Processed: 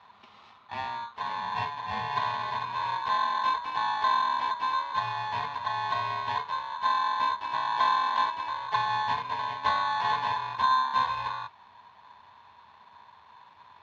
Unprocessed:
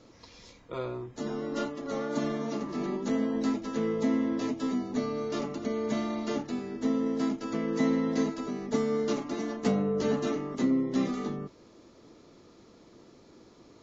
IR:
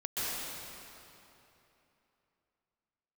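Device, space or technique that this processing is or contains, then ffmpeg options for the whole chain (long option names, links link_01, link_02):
ring modulator pedal into a guitar cabinet: -af "aeval=exprs='val(0)*sgn(sin(2*PI*1300*n/s))':channel_layout=same,highpass=80,equalizer=frequency=89:width_type=q:width=4:gain=9,equalizer=frequency=210:width_type=q:width=4:gain=8,equalizer=frequency=320:width_type=q:width=4:gain=-10,equalizer=frequency=980:width_type=q:width=4:gain=8,equalizer=frequency=1600:width_type=q:width=4:gain=-10,lowpass=frequency=3600:width=0.5412,lowpass=frequency=3600:width=1.3066"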